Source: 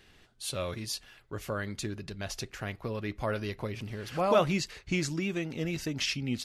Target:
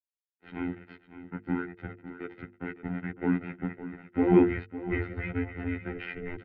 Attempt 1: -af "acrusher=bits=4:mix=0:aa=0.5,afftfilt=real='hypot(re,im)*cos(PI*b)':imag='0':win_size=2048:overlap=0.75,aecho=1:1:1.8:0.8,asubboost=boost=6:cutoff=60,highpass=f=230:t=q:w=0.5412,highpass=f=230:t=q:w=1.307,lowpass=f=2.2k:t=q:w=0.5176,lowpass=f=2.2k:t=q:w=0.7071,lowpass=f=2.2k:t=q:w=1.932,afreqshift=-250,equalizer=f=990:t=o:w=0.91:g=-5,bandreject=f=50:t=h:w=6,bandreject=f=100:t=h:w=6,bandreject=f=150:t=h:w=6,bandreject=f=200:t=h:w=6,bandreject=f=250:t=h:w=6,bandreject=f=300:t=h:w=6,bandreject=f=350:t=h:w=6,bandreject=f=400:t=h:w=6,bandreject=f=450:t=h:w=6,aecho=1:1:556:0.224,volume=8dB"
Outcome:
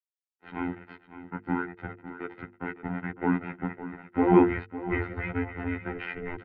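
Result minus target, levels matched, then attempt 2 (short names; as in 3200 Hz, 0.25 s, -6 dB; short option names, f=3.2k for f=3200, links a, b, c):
1000 Hz band +6.5 dB
-af "acrusher=bits=4:mix=0:aa=0.5,afftfilt=real='hypot(re,im)*cos(PI*b)':imag='0':win_size=2048:overlap=0.75,aecho=1:1:1.8:0.8,asubboost=boost=6:cutoff=60,highpass=f=230:t=q:w=0.5412,highpass=f=230:t=q:w=1.307,lowpass=f=2.2k:t=q:w=0.5176,lowpass=f=2.2k:t=q:w=0.7071,lowpass=f=2.2k:t=q:w=1.932,afreqshift=-250,equalizer=f=990:t=o:w=0.91:g=-16,bandreject=f=50:t=h:w=6,bandreject=f=100:t=h:w=6,bandreject=f=150:t=h:w=6,bandreject=f=200:t=h:w=6,bandreject=f=250:t=h:w=6,bandreject=f=300:t=h:w=6,bandreject=f=350:t=h:w=6,bandreject=f=400:t=h:w=6,bandreject=f=450:t=h:w=6,aecho=1:1:556:0.224,volume=8dB"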